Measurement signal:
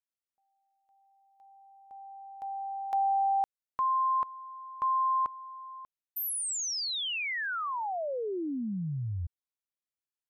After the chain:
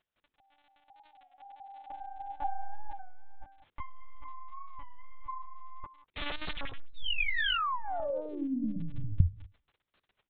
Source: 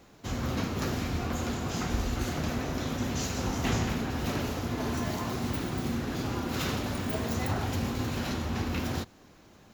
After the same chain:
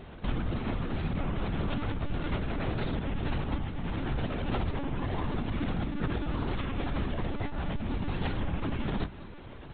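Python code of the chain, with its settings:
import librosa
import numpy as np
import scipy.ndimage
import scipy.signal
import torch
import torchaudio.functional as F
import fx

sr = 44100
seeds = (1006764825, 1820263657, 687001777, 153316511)

y = fx.tracing_dist(x, sr, depth_ms=0.29)
y = fx.over_compress(y, sr, threshold_db=-37.0, ratio=-1.0)
y = fx.low_shelf(y, sr, hz=130.0, db=10.0)
y = fx.dmg_crackle(y, sr, seeds[0], per_s=24.0, level_db=-45.0)
y = fx.hum_notches(y, sr, base_hz=50, count=9)
y = y + 10.0 ** (-19.0 / 20.0) * np.pad(y, (int(190 * sr / 1000.0), 0))[:len(y)]
y = fx.lpc_monotone(y, sr, seeds[1], pitch_hz=290.0, order=16)
y = fx.record_warp(y, sr, rpm=33.33, depth_cents=100.0)
y = y * 10.0 ** (2.5 / 20.0)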